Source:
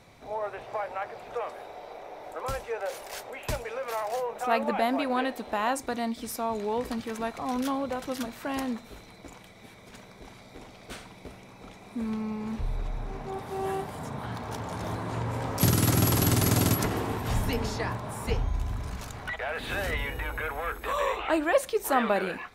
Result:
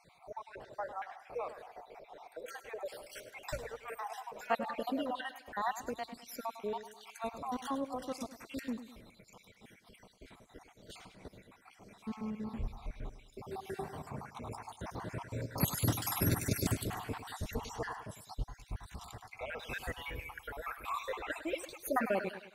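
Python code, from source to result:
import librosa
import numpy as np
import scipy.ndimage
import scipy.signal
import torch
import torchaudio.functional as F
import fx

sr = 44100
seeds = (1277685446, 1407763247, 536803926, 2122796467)

p1 = fx.spec_dropout(x, sr, seeds[0], share_pct=60)
p2 = p1 + fx.echo_feedback(p1, sr, ms=103, feedback_pct=44, wet_db=-12.5, dry=0)
y = p2 * librosa.db_to_amplitude(-5.5)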